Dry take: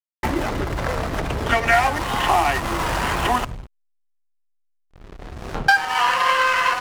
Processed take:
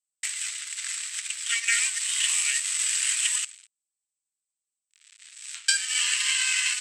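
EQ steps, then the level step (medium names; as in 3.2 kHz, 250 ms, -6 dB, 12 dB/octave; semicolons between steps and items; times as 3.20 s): inverse Chebyshev high-pass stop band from 670 Hz, stop band 60 dB; resonant low-pass 8 kHz, resonance Q 14; 0.0 dB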